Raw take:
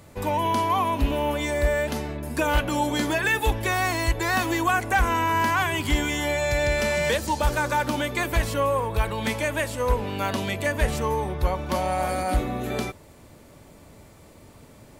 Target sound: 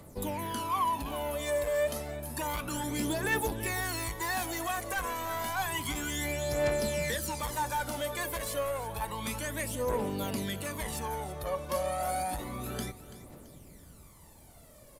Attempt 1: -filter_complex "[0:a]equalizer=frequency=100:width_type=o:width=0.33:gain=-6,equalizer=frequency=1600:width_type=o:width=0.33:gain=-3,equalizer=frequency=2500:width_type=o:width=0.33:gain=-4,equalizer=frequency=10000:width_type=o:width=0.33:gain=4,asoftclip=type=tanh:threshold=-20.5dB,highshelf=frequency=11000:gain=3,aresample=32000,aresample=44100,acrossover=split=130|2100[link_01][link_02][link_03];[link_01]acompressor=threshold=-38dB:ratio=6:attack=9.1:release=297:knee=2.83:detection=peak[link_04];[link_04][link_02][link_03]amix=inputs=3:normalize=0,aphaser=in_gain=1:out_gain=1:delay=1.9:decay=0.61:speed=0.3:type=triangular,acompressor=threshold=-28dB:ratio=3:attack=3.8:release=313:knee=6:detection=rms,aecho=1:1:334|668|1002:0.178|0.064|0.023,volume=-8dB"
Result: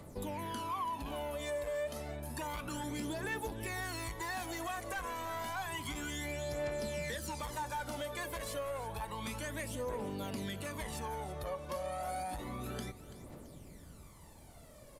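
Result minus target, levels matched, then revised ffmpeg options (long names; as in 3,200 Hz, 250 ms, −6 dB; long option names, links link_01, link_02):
downward compressor: peak gain reduction +10 dB; 8,000 Hz band −2.0 dB
-filter_complex "[0:a]equalizer=frequency=100:width_type=o:width=0.33:gain=-6,equalizer=frequency=1600:width_type=o:width=0.33:gain=-3,equalizer=frequency=2500:width_type=o:width=0.33:gain=-4,equalizer=frequency=10000:width_type=o:width=0.33:gain=4,asoftclip=type=tanh:threshold=-20.5dB,highshelf=frequency=11000:gain=13.5,aresample=32000,aresample=44100,acrossover=split=130|2100[link_01][link_02][link_03];[link_01]acompressor=threshold=-38dB:ratio=6:attack=9.1:release=297:knee=2.83:detection=peak[link_04];[link_04][link_02][link_03]amix=inputs=3:normalize=0,aphaser=in_gain=1:out_gain=1:delay=1.9:decay=0.61:speed=0.3:type=triangular,aecho=1:1:334|668|1002:0.178|0.064|0.023,volume=-8dB"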